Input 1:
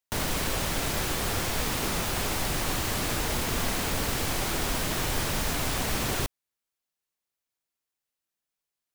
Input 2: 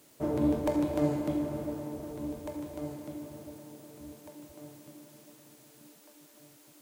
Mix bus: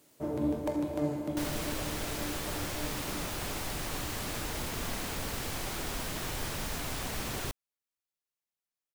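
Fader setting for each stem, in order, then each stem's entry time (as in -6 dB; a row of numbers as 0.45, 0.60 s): -7.5, -3.5 dB; 1.25, 0.00 s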